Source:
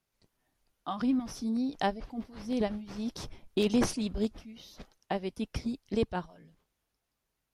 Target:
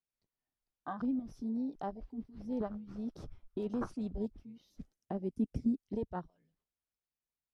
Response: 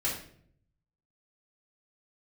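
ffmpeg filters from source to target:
-filter_complex "[0:a]asplit=2[a][b];[b]acompressor=threshold=-41dB:ratio=8,volume=-3dB[c];[a][c]amix=inputs=2:normalize=0,asettb=1/sr,asplit=3[d][e][f];[d]atrim=end=2.524[g];[e]atrim=start=2.52:end=4.09,asetpts=PTS-STARTPTS,afade=t=in:d=0.004:c=qsin,afade=t=out:st=1.566:d=0.004:c=qsin,equalizer=f=1.3k:w=2.3:g=11.5[h];[f]atrim=start=4.086[i];[g][h]acrossfade=d=0.004:c1=hsin:c2=qsin[j];[j][i]acrossfade=d=0.004:c1=qsin:c2=hsin,alimiter=limit=-19.5dB:level=0:latency=1:release=145,afwtdn=0.0158,asettb=1/sr,asplit=3[k][l][m];[k]atrim=end=4.704[n];[l]atrim=start=4.7:end=5.84,asetpts=PTS-STARTPTS,afade=t=in:d=0.004:c=qsin,afade=t=out:st=1.136:d=0.004:c=qsin,equalizer=f=125:t=o:w=1:g=3,equalizer=f=250:t=o:w=1:g=8,equalizer=f=1k:t=o:w=1:g=-6,equalizer=f=4k:t=o:w=1:g=-5,equalizer=f=8k:t=o:w=1:g=7[o];[m]atrim=start=5.836[p];[n][o]acrossfade=d=0.004:c1=hsin:c2=qsin[q];[q][p]acrossfade=d=0.004:c1=qsin:c2=hsin,volume=-6.5dB"

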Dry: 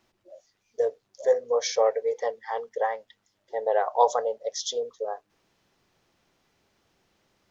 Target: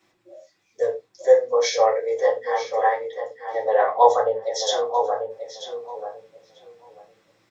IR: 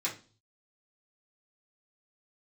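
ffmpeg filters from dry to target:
-filter_complex "[0:a]asettb=1/sr,asplit=3[a][b][c];[a]atrim=end=3.814[d];[b]atrim=start=3.81:end=4.43,asetpts=PTS-STARTPTS,afade=t=in:d=0.004:c=qsin,afade=t=out:st=0.616:d=0.004:c=qsin,aemphasis=mode=reproduction:type=bsi[e];[c]atrim=start=4.426[f];[d][e]acrossfade=d=0.004:c1=hsin:c2=qsin[g];[g][f]acrossfade=d=0.004:c1=qsin:c2=hsin,asplit=2[h][i];[i]adelay=939,lowpass=f=2.7k:p=1,volume=-7dB,asplit=2[j][k];[k]adelay=939,lowpass=f=2.7k:p=1,volume=0.19,asplit=2[l][m];[m]adelay=939,lowpass=f=2.7k:p=1,volume=0.19[n];[h][j][l][n]amix=inputs=4:normalize=0[o];[1:a]atrim=start_sample=2205,afade=t=out:st=0.16:d=0.01,atrim=end_sample=7497[p];[o][p]afir=irnorm=-1:irlink=0,volume=1.5dB"

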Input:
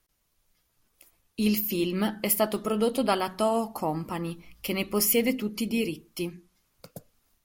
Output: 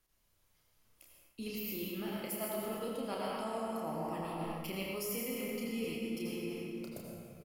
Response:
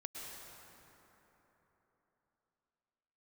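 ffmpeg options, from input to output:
-filter_complex "[1:a]atrim=start_sample=2205,asetrate=61740,aresample=44100[a];[0:a][a]afir=irnorm=-1:irlink=0,areverse,acompressor=threshold=-40dB:ratio=6,areverse,asplit=2[b][c];[c]adelay=31,volume=-5dB[d];[b][d]amix=inputs=2:normalize=0,volume=3dB"

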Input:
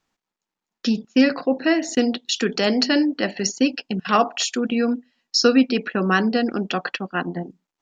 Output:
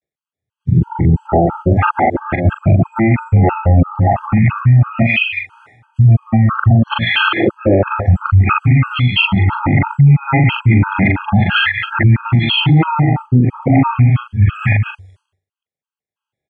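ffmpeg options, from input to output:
-filter_complex "[0:a]areverse,highpass=f=110:w=0.5412,highpass=f=110:w=1.3066,bandreject=f=50:t=h:w=6,bandreject=f=100:t=h:w=6,bandreject=f=150:t=h:w=6,bandreject=f=200:t=h:w=6,agate=range=-33dB:threshold=-44dB:ratio=3:detection=peak,acrossover=split=140[a][b];[b]acompressor=threshold=-26dB:ratio=6[c];[a][c]amix=inputs=2:normalize=0,asetrate=20903,aresample=44100,asplit=2[d][e];[e]adelay=41,volume=-5.5dB[f];[d][f]amix=inputs=2:normalize=0,asplit=2[g][h];[h]adelay=180.8,volume=-15dB,highshelf=f=4k:g=-4.07[i];[g][i]amix=inputs=2:normalize=0,alimiter=level_in=29dB:limit=-1dB:release=50:level=0:latency=1,afftfilt=real='re*gt(sin(2*PI*3*pts/sr)*(1-2*mod(floor(b*sr/1024/830),2)),0)':imag='im*gt(sin(2*PI*3*pts/sr)*(1-2*mod(floor(b*sr/1024/830),2)),0)':win_size=1024:overlap=0.75,volume=-1.5dB"

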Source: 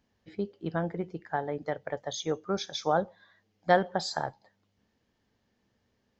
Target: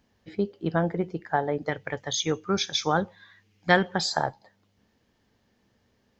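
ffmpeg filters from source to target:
-filter_complex "[0:a]asettb=1/sr,asplit=3[a][b][c];[a]atrim=end=1.694[d];[b]atrim=start=1.69:end=4.06,asetpts=PTS-STARTPTS,afade=t=in:d=0.004:c=qsin,afade=t=out:st=2.366:d=0.004:c=qsin,equalizer=f=100:t=o:w=0.67:g=5,equalizer=f=630:t=o:w=0.67:g=-10,equalizer=f=2.5k:t=o:w=0.67:g=8,equalizer=f=6.3k:t=o:w=0.67:g=3[e];[c]atrim=start=4.056[f];[d][e]acrossfade=d=0.004:c1=hsin:c2=qsin[g];[g][f]acrossfade=d=0.004:c1=qsin:c2=hsin,volume=6dB"

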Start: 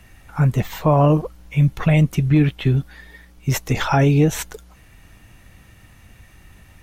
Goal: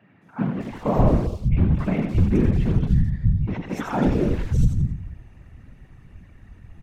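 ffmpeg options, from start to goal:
-filter_complex "[0:a]asplit=2[a][b];[b]aecho=0:1:87|174|261|348:0.501|0.16|0.0513|0.0164[c];[a][c]amix=inputs=2:normalize=0,tremolo=f=110:d=0.71,asplit=2[d][e];[e]aeval=exprs='(mod(9.44*val(0)+1,2)-1)/9.44':c=same,volume=-9.5dB[f];[d][f]amix=inputs=2:normalize=0,aemphasis=mode=reproduction:type=75fm,afftfilt=real='hypot(re,im)*cos(2*PI*random(0))':imag='hypot(re,im)*sin(2*PI*random(1))':win_size=512:overlap=0.75,lowshelf=f=210:g=11.5,acrossover=split=170|3500[g][h][i];[i]adelay=220[j];[g]adelay=580[k];[k][h][j]amix=inputs=3:normalize=0"

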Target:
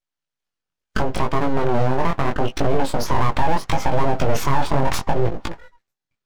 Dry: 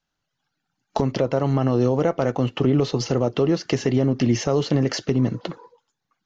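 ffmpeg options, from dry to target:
-filter_complex "[0:a]asettb=1/sr,asplit=3[a][b][c];[a]atrim=end=2.984[d];[b]atrim=start=2.98:end=5.13,asetpts=PTS-STARTPTS,afade=t=in:d=0.004:c=qsin,afade=t=out:st=2.146:d=0.004:c=qsin,equalizer=f=500:t=o:w=1:g=10,equalizer=f=1k:t=o:w=1:g=6,equalizer=f=4k:t=o:w=1:g=-5[e];[c]atrim=start=5.126[f];[d][e]acrossfade=d=0.004:c1=hsin:c2=qsin[g];[g][f]acrossfade=d=0.004:c1=qsin:c2=hsin,afftdn=nr=13:nf=-37,lowshelf=f=350:g=-3.5,bandreject=f=392:t=h:w=4,bandreject=f=784:t=h:w=4,bandreject=f=1.176k:t=h:w=4,aeval=exprs='abs(val(0))':c=same,flanger=delay=17.5:depth=5.7:speed=0.74,alimiter=level_in=15dB:limit=-1dB:release=50:level=0:latency=1,volume=-6dB"

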